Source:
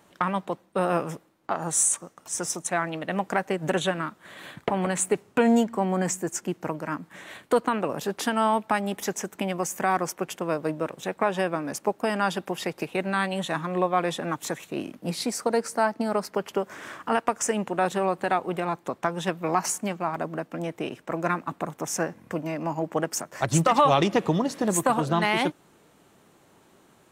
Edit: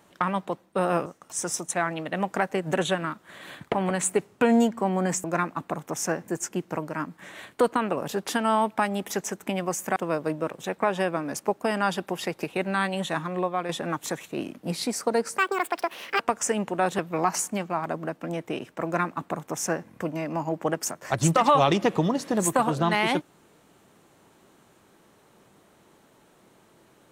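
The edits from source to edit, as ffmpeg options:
-filter_complex "[0:a]asplit=9[s0][s1][s2][s3][s4][s5][s6][s7][s8];[s0]atrim=end=1.062[s9];[s1]atrim=start=2.018:end=6.202[s10];[s2]atrim=start=21.148:end=22.192[s11];[s3]atrim=start=6.198:end=9.882[s12];[s4]atrim=start=10.348:end=14.08,asetpts=PTS-STARTPTS,afade=t=out:st=3.192:d=0.54:silence=0.473151[s13];[s5]atrim=start=14.08:end=15.774,asetpts=PTS-STARTPTS,afade=t=in:d=0.004:c=hsin:silence=0.473151[s14];[s6]atrim=start=15.77:end=17.19,asetpts=PTS-STARTPTS,asetrate=76734,aresample=44100[s15];[s7]atrim=start=17.186:end=17.982[s16];[s8]atrim=start=19.288[s17];[s9][s10]acrossfade=d=0.004:c1=hsin:c2=hsin[s18];[s18][s11]acrossfade=d=0.004:c1=hsin:c2=hsin[s19];[s19][s12]acrossfade=d=0.004:c1=hsin:c2=hsin[s20];[s13][s14]concat=n=2:v=0:a=1[s21];[s20][s21]acrossfade=d=0.004:c1=hsin:c2=hsin[s22];[s22][s15]acrossfade=d=0.004:c1=hsin:c2=hsin[s23];[s23][s16]acrossfade=d=0.004:c1=hsin:c2=hsin[s24];[s24][s17]acrossfade=d=0.004:c1=hsin:c2=hsin"

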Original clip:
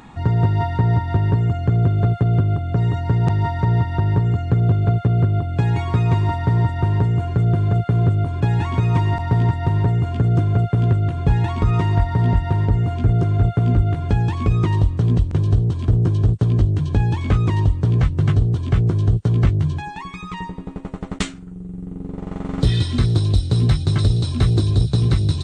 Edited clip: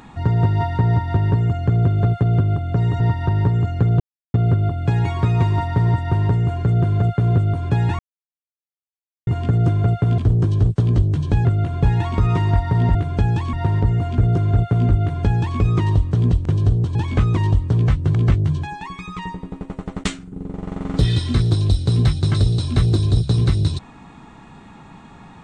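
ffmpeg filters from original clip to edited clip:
-filter_complex "[0:a]asplit=13[s0][s1][s2][s3][s4][s5][s6][s7][s8][s9][s10][s11][s12];[s0]atrim=end=3.002[s13];[s1]atrim=start=3.708:end=4.71,asetpts=PTS-STARTPTS,afade=t=out:st=0.998:d=0.004:c=hsin[s14];[s2]atrim=start=4.71:end=5.05,asetpts=PTS-STARTPTS,volume=0[s15];[s3]atrim=start=5.05:end=8.7,asetpts=PTS-STARTPTS,afade=t=in:d=0.004:c=hsin,afade=t=out:st=3.646:d=0.004:c=hsin[s16];[s4]atrim=start=8.7:end=9.98,asetpts=PTS-STARTPTS,volume=0[s17];[s5]atrim=start=9.98:end=10.892,asetpts=PTS-STARTPTS,afade=t=in:d=0.004:c=hsin[s18];[s6]atrim=start=15.808:end=17.082[s19];[s7]atrim=start=10.888:end=12.392[s20];[s8]atrim=start=13.868:end=14.452[s21];[s9]atrim=start=12.388:end=15.812[s22];[s10]atrim=start=17.078:end=18.282[s23];[s11]atrim=start=19.298:end=21.482[s24];[s12]atrim=start=21.968[s25];[s14][s15][s16][s17][s18]concat=n=5:v=0:a=1[s26];[s13][s26]acrossfade=d=0.004:c1=hsin:c2=hsin[s27];[s27][s19]acrossfade=d=0.004:c1=hsin:c2=hsin[s28];[s28][s20]acrossfade=d=0.004:c1=hsin:c2=hsin[s29];[s29][s21]acrossfade=d=0.004:c1=hsin:c2=hsin[s30];[s30][s22]acrossfade=d=0.004:c1=hsin:c2=hsin[s31];[s31][s23]acrossfade=d=0.004:c1=hsin:c2=hsin[s32];[s32][s24]acrossfade=d=0.004:c1=hsin:c2=hsin[s33];[s33][s25]acrossfade=d=0.004:c1=hsin:c2=hsin"

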